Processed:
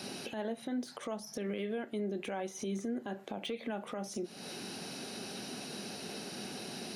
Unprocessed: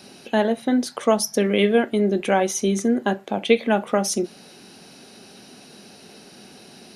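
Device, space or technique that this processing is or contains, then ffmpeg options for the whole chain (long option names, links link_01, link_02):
podcast mastering chain: -af "highpass=74,deesser=0.75,acompressor=threshold=-34dB:ratio=4,alimiter=level_in=7dB:limit=-24dB:level=0:latency=1:release=136,volume=-7dB,volume=3dB" -ar 48000 -c:a libmp3lame -b:a 112k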